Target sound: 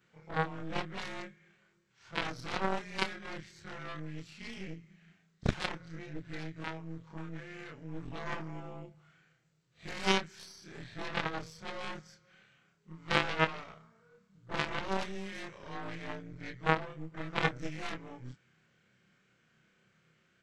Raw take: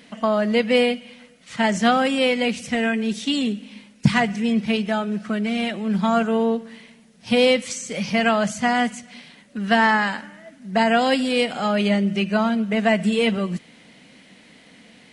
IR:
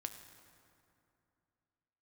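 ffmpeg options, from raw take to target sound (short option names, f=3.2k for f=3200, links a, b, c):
-af "afftfilt=real='re':imag='-im':win_size=2048:overlap=0.75,asetrate=32667,aresample=44100,aeval=exprs='0.376*(cos(1*acos(clip(val(0)/0.376,-1,1)))-cos(1*PI/2))+0.15*(cos(3*acos(clip(val(0)/0.376,-1,1)))-cos(3*PI/2))+0.00299*(cos(5*acos(clip(val(0)/0.376,-1,1)))-cos(5*PI/2))+0.0188*(cos(6*acos(clip(val(0)/0.376,-1,1)))-cos(6*PI/2))+0.00211*(cos(8*acos(clip(val(0)/0.376,-1,1)))-cos(8*PI/2))':c=same"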